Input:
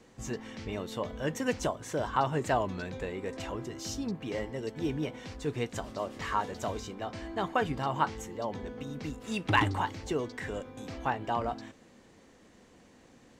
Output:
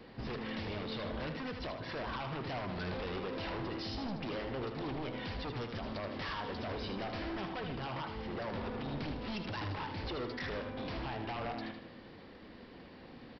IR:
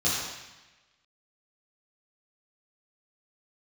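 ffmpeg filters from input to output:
-af "acompressor=threshold=-35dB:ratio=5,alimiter=level_in=8.5dB:limit=-24dB:level=0:latency=1:release=53,volume=-8.5dB,aresample=11025,aeval=exprs='0.0106*(abs(mod(val(0)/0.0106+3,4)-2)-1)':c=same,aresample=44100,aecho=1:1:78|156|234|312|390:0.447|0.192|0.0826|0.0355|0.0153,volume=5dB"

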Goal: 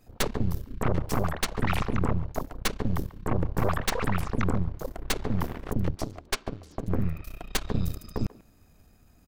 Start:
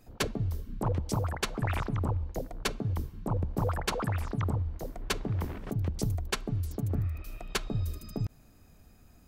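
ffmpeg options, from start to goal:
-filter_complex "[0:a]asettb=1/sr,asplit=3[a][b][c];[a]atrim=end=5.964[d];[b]atrim=start=5.96:end=6.88,asetpts=PTS-STARTPTS,afade=t=in:d=0.004:c=qsin,afade=t=out:st=0.916:d=0.004:c=qsin,acrossover=split=160 7500:gain=0.0794 1 0.0794[e][f][g];[e][f][g]amix=inputs=3:normalize=0[h];[c]atrim=start=6.876[i];[d][h]acrossfade=d=0.004:c1=hsin:c2=qsin[j];[j][i]acrossfade=d=0.004:c1=qsin:c2=hsin,aeval=exprs='0.15*(cos(1*acos(clip(val(0)/0.15,-1,1)))-cos(1*PI/2))+0.0668*(cos(6*acos(clip(val(0)/0.15,-1,1)))-cos(6*PI/2))':c=same,asplit=2[k][l];[l]adelay=140,highpass=300,lowpass=3.4k,asoftclip=type=hard:threshold=-23.5dB,volume=-16dB[m];[k][m]amix=inputs=2:normalize=0,volume=-1dB"

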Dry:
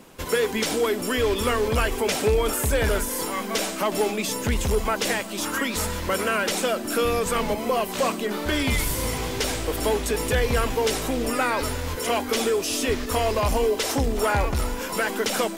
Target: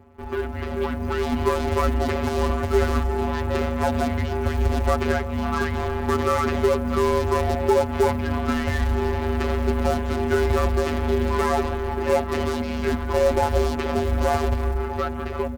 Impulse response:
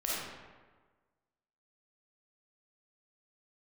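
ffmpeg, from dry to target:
-af "lowpass=1.4k,dynaudnorm=f=240:g=9:m=9dB,aeval=exprs='0.266*(cos(1*acos(clip(val(0)/0.266,-1,1)))-cos(1*PI/2))+0.00841*(cos(2*acos(clip(val(0)/0.266,-1,1)))-cos(2*PI/2))+0.0119*(cos(5*acos(clip(val(0)/0.266,-1,1)))-cos(5*PI/2))+0.0237*(cos(8*acos(clip(val(0)/0.266,-1,1)))-cos(8*PI/2))':c=same,afftfilt=real='hypot(re,im)*cos(PI*b)':imag='0':win_size=1024:overlap=0.75,acrusher=bits=8:mode=log:mix=0:aa=0.000001,asetrate=39289,aresample=44100,atempo=1.12246,afreqshift=-64"

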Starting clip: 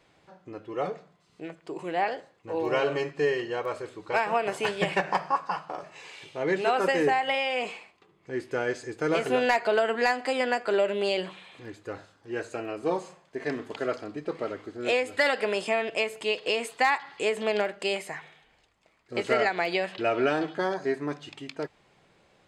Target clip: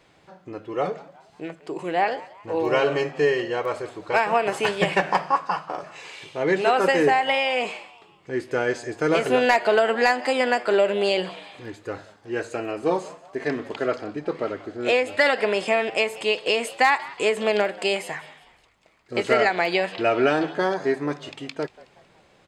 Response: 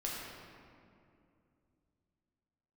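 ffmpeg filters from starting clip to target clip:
-filter_complex "[0:a]asettb=1/sr,asplit=3[a][b][c];[a]atrim=end=13.484[d];[b]atrim=start=13.48:end=15.68,asetpts=PTS-STARTPTS,afade=t=in:d=0.004:c=qsin,afade=t=out:st=2.196:d=0.004:c=qsin,highshelf=f=7k:g=-6.5[e];[c]atrim=start=15.676[f];[d][e]acrossfade=d=0.004:c1=hsin:c2=qsin[g];[g][f]acrossfade=d=0.004:c1=qsin:c2=hsin,asplit=4[h][i][j][k];[i]adelay=185,afreqshift=110,volume=-20.5dB[l];[j]adelay=370,afreqshift=220,volume=-27.8dB[m];[k]adelay=555,afreqshift=330,volume=-35.2dB[n];[h][l][m][n]amix=inputs=4:normalize=0,volume=5dB"

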